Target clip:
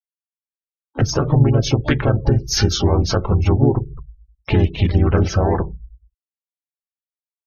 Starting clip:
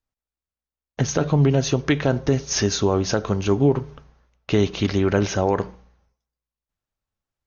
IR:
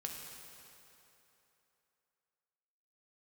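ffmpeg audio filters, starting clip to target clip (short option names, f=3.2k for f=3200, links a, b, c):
-filter_complex "[0:a]asplit=3[a][b][c];[b]asetrate=37084,aresample=44100,atempo=1.18921,volume=0dB[d];[c]asetrate=88200,aresample=44100,atempo=0.5,volume=-13dB[e];[a][d][e]amix=inputs=3:normalize=0,asubboost=boost=7:cutoff=110,asplit=2[f][g];[g]acompressor=threshold=-21dB:ratio=6,volume=0dB[h];[f][h]amix=inputs=2:normalize=0,afftfilt=real='re*gte(hypot(re,im),0.0316)':imag='im*gte(hypot(re,im),0.0316)':win_size=1024:overlap=0.75,afftdn=nr=16:nf=-26,volume=-3dB"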